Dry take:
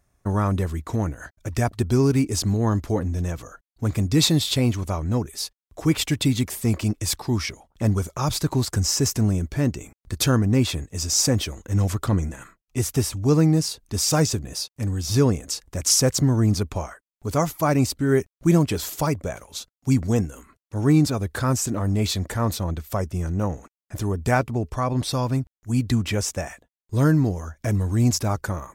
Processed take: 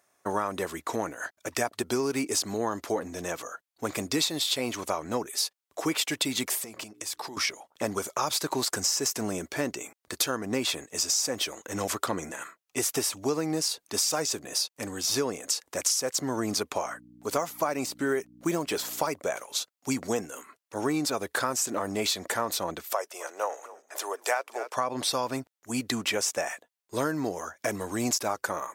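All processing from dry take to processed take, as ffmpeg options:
ffmpeg -i in.wav -filter_complex "[0:a]asettb=1/sr,asplit=3[link_01][link_02][link_03];[link_01]atrim=end=6.584[link_04];[link_02]atrim=start=6.58:end=7.37,asetpts=PTS-STARTPTS,afade=type=in:duration=0.004:curve=qsin,afade=type=out:start_time=0.786:duration=0.004:curve=qsin,bandreject=frequency=60:width_type=h:width=6,bandreject=frequency=120:width_type=h:width=6,bandreject=frequency=180:width_type=h:width=6,bandreject=frequency=240:width_type=h:width=6,bandreject=frequency=300:width_type=h:width=6,bandreject=frequency=360:width_type=h:width=6,bandreject=frequency=420:width_type=h:width=6,acompressor=threshold=-33dB:ratio=16:attack=3.2:release=140:knee=1:detection=peak[link_05];[link_03]atrim=start=7.366[link_06];[link_04][link_05]acrossfade=duration=0.004:curve1=hsin:curve2=qsin[link_07];[link_07][link_06]acrossfade=duration=0.004:curve1=qsin:curve2=hsin,asettb=1/sr,asplit=3[link_08][link_09][link_10];[link_08]atrim=end=16.844[link_11];[link_09]atrim=start=16.84:end=19.08,asetpts=PTS-STARTPTS,afade=type=in:duration=0.004:curve=qsin,afade=type=out:start_time=2.236:duration=0.004:curve=qsin,deesser=0.6,aeval=exprs='val(0)+0.0141*(sin(2*PI*60*n/s)+sin(2*PI*2*60*n/s)/2+sin(2*PI*3*60*n/s)/3+sin(2*PI*4*60*n/s)/4+sin(2*PI*5*60*n/s)/5)':channel_layout=same[link_12];[link_10]atrim=start=19.076[link_13];[link_11][link_12]acrossfade=duration=0.004:curve1=hsin:curve2=qsin[link_14];[link_14][link_13]acrossfade=duration=0.004:curve1=qsin:curve2=hsin,asettb=1/sr,asplit=3[link_15][link_16][link_17];[link_15]atrim=end=22.934[link_18];[link_16]atrim=start=22.93:end=24.77,asetpts=PTS-STARTPTS,afade=type=in:duration=0.004:curve=qsin,afade=type=out:start_time=1.836:duration=0.004:curve=qsin,highpass=frequency=490:width=0.5412,highpass=frequency=490:width=1.3066,asplit=5[link_19][link_20][link_21][link_22][link_23];[link_20]adelay=259,afreqshift=-59,volume=-19.5dB[link_24];[link_21]adelay=518,afreqshift=-118,volume=-25.9dB[link_25];[link_22]adelay=777,afreqshift=-177,volume=-32.3dB[link_26];[link_23]adelay=1036,afreqshift=-236,volume=-38.6dB[link_27];[link_19][link_24][link_25][link_26][link_27]amix=inputs=5:normalize=0,atrim=end_sample=81144[link_28];[link_17]atrim=start=24.766[link_29];[link_18][link_28]acrossfade=duration=0.004:curve1=hsin:curve2=qsin[link_30];[link_30][link_29]acrossfade=duration=0.004:curve1=qsin:curve2=hsin,highpass=460,acompressor=threshold=-28dB:ratio=12,volume=4.5dB" out.wav

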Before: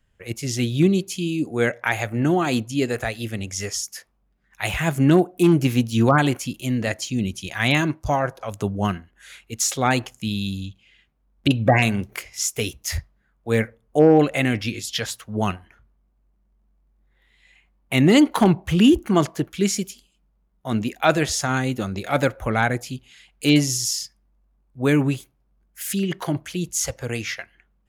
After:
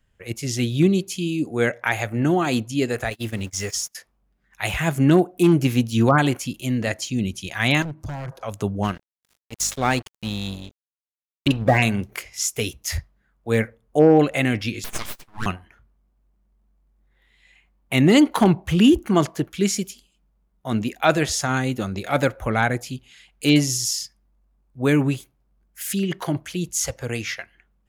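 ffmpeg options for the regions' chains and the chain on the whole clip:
ffmpeg -i in.wav -filter_complex "[0:a]asettb=1/sr,asplit=3[link_01][link_02][link_03];[link_01]atrim=end=3.104[link_04];[link_02]atrim=start=3.1:end=3.95,asetpts=PTS-STARTPTS,afade=type=in:duration=0.004:curve=qsin,afade=type=out:start_time=0.846:duration=0.004:curve=qsin,aeval=exprs='val(0)+0.5*0.0126*sgn(val(0))':channel_layout=same,agate=range=-32dB:threshold=-32dB:ratio=16:release=100:detection=peak[link_05];[link_03]atrim=start=3.946[link_06];[link_04][link_05]acrossfade=duration=0.004:curve1=hsin:curve2=qsin[link_07];[link_07][link_06]acrossfade=duration=0.004:curve1=qsin:curve2=hsin,asettb=1/sr,asplit=3[link_08][link_09][link_10];[link_08]atrim=end=7.824[link_11];[link_09]atrim=start=7.82:end=8.32,asetpts=PTS-STARTPTS,afade=type=in:duration=0.004:curve=qsin,afade=type=out:start_time=0.496:duration=0.004:curve=qsin,equalizer=frequency=150:width_type=o:width=1.6:gain=13.5,acompressor=threshold=-26dB:ratio=6:attack=3.2:release=140:knee=1:detection=peak,aeval=exprs='0.0562*(abs(mod(val(0)/0.0562+3,4)-2)-1)':channel_layout=same[link_12];[link_10]atrim=start=8.316[link_13];[link_11][link_12]acrossfade=duration=0.004:curve1=hsin:curve2=qsin[link_14];[link_14][link_13]acrossfade=duration=0.004:curve1=qsin:curve2=hsin,asettb=1/sr,asplit=3[link_15][link_16][link_17];[link_15]atrim=end=8.834[link_18];[link_16]atrim=start=8.83:end=11.78,asetpts=PTS-STARTPTS,afade=type=in:duration=0.004:curve=qsin,afade=type=out:start_time=2.946:duration=0.004:curve=qsin,agate=range=-33dB:threshold=-49dB:ratio=3:release=100:detection=peak,aeval=exprs='val(0)+0.00891*(sin(2*PI*50*n/s)+sin(2*PI*2*50*n/s)/2+sin(2*PI*3*50*n/s)/3+sin(2*PI*4*50*n/s)/4+sin(2*PI*5*50*n/s)/5)':channel_layout=same,aeval=exprs='sgn(val(0))*max(abs(val(0))-0.0224,0)':channel_layout=same[link_19];[link_17]atrim=start=11.776[link_20];[link_18][link_19]acrossfade=duration=0.004:curve1=hsin:curve2=qsin[link_21];[link_21][link_20]acrossfade=duration=0.004:curve1=qsin:curve2=hsin,asettb=1/sr,asplit=3[link_22][link_23][link_24];[link_22]atrim=end=14.844[link_25];[link_23]atrim=start=14.84:end=15.46,asetpts=PTS-STARTPTS,afade=type=in:duration=0.004:curve=qsin,afade=type=out:start_time=0.616:duration=0.004:curve=qsin,highpass=frequency=460:width=0.5412,highpass=frequency=460:width=1.3066,aeval=exprs='abs(val(0))':channel_layout=same[link_26];[link_24]atrim=start=15.456[link_27];[link_25][link_26]acrossfade=duration=0.004:curve1=hsin:curve2=qsin[link_28];[link_28][link_27]acrossfade=duration=0.004:curve1=qsin:curve2=hsin" out.wav

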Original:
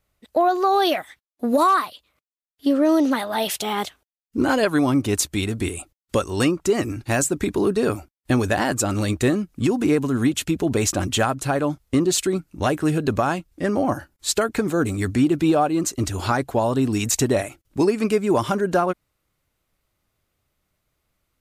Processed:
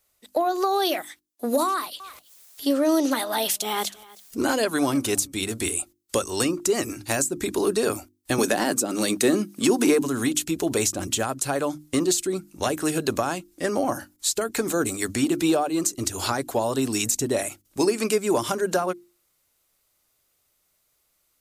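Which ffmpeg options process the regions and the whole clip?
ffmpeg -i in.wav -filter_complex "[0:a]asettb=1/sr,asplit=3[link_01][link_02][link_03];[link_01]atrim=end=1.684[link_04];[link_02]atrim=start=1.68:end=5.37,asetpts=PTS-STARTPTS,afade=type=in:duration=0.004:curve=qsin,afade=type=out:start_time=3.686:duration=0.004:curve=qsin,acompressor=mode=upward:threshold=-33dB:ratio=2.5:attack=3.2:release=140:knee=2.83:detection=peak,aecho=1:1:319:0.0631,atrim=end_sample=162729[link_05];[link_03]atrim=start=5.366[link_06];[link_04][link_05]acrossfade=duration=0.004:curve1=hsin:curve2=qsin[link_07];[link_07][link_06]acrossfade=duration=0.004:curve1=qsin:curve2=hsin,asettb=1/sr,asplit=3[link_08][link_09][link_10];[link_08]atrim=end=8.384[link_11];[link_09]atrim=start=8.38:end=10.02,asetpts=PTS-STARTPTS,afade=type=in:duration=0.004:curve=qsin,afade=type=out:start_time=1.636:duration=0.004:curve=qsin,highpass=frequency=170:width=0.5412,highpass=frequency=170:width=1.3066,bandreject=frequency=7200:width=14,acontrast=33[link_12];[link_10]atrim=start=10.016[link_13];[link_11][link_12]acrossfade=duration=0.004:curve1=hsin:curve2=qsin[link_14];[link_14][link_13]acrossfade=duration=0.004:curve1=qsin:curve2=hsin,bass=frequency=250:gain=-9,treble=frequency=4000:gain=11,acrossover=split=420[link_15][link_16];[link_16]acompressor=threshold=-22dB:ratio=10[link_17];[link_15][link_17]amix=inputs=2:normalize=0,bandreject=frequency=50:width_type=h:width=6,bandreject=frequency=100:width_type=h:width=6,bandreject=frequency=150:width_type=h:width=6,bandreject=frequency=200:width_type=h:width=6,bandreject=frequency=250:width_type=h:width=6,bandreject=frequency=300:width_type=h:width=6,bandreject=frequency=350:width_type=h:width=6" out.wav

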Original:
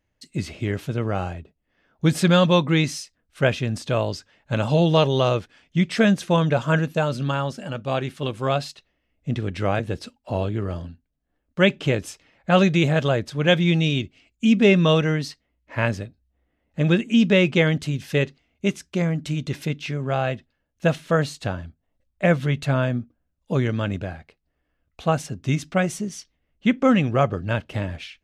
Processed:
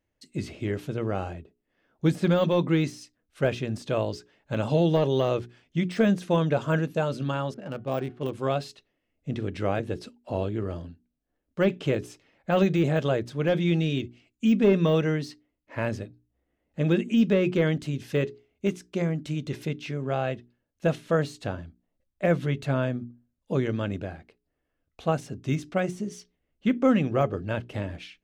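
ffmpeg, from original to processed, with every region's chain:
ffmpeg -i in.wav -filter_complex "[0:a]asettb=1/sr,asplit=3[link_01][link_02][link_03];[link_01]atrim=end=7.544[link_04];[link_02]atrim=start=7.54:end=8.33,asetpts=PTS-STARTPTS,afade=type=in:duration=0.004:curve=qsin,afade=type=out:start_time=0.786:duration=0.004:curve=qsin,bandreject=frequency=366:width_type=h:width=4,bandreject=frequency=732:width_type=h:width=4,bandreject=frequency=1098:width_type=h:width=4,bandreject=frequency=1464:width_type=h:width=4,bandreject=frequency=1830:width_type=h:width=4,bandreject=frequency=2196:width_type=h:width=4,bandreject=frequency=2562:width_type=h:width=4,bandreject=frequency=2928:width_type=h:width=4,bandreject=frequency=3294:width_type=h:width=4,bandreject=frequency=3660:width_type=h:width=4,bandreject=frequency=4026:width_type=h:width=4,bandreject=frequency=4392:width_type=h:width=4,bandreject=frequency=4758:width_type=h:width=4,bandreject=frequency=5124:width_type=h:width=4,bandreject=frequency=5490:width_type=h:width=4,bandreject=frequency=5856:width_type=h:width=4,bandreject=frequency=6222:width_type=h:width=4,bandreject=frequency=6588:width_type=h:width=4,bandreject=frequency=6954:width_type=h:width=4,bandreject=frequency=7320:width_type=h:width=4,bandreject=frequency=7686:width_type=h:width=4,bandreject=frequency=8052:width_type=h:width=4,bandreject=frequency=8418:width_type=h:width=4,bandreject=frequency=8784:width_type=h:width=4,bandreject=frequency=9150:width_type=h:width=4,bandreject=frequency=9516:width_type=h:width=4,bandreject=frequency=9882:width_type=h:width=4,bandreject=frequency=10248:width_type=h:width=4,bandreject=frequency=10614:width_type=h:width=4,bandreject=frequency=10980:width_type=h:width=4,bandreject=frequency=11346:width_type=h:width=4,bandreject=frequency=11712:width_type=h:width=4,bandreject=frequency=12078:width_type=h:width=4,bandreject=frequency=12444:width_type=h:width=4,bandreject=frequency=12810:width_type=h:width=4,bandreject=frequency=13176:width_type=h:width=4,bandreject=frequency=13542:width_type=h:width=4,bandreject=frequency=13908:width_type=h:width=4,bandreject=frequency=14274:width_type=h:width=4,bandreject=frequency=14640:width_type=h:width=4,adynamicsmooth=sensitivity=5.5:basefreq=1400,adynamicequalizer=threshold=0.00891:dfrequency=1800:dqfactor=0.7:tfrequency=1800:tqfactor=0.7:attack=5:release=100:ratio=0.375:range=3:mode=cutabove:tftype=highshelf[link_05];[link_03]atrim=start=8.326[link_06];[link_04][link_05]acrossfade=duration=0.004:curve1=hsin:curve2=qsin[link_07];[link_07][link_06]acrossfade=duration=0.004:curve1=qsin:curve2=hsin,equalizer=frequency=360:width=1:gain=5.5,bandreject=frequency=60:width_type=h:width=6,bandreject=frequency=120:width_type=h:width=6,bandreject=frequency=180:width_type=h:width=6,bandreject=frequency=240:width_type=h:width=6,bandreject=frequency=300:width_type=h:width=6,bandreject=frequency=360:width_type=h:width=6,bandreject=frequency=420:width_type=h:width=6,deesser=0.8,volume=-6dB" out.wav

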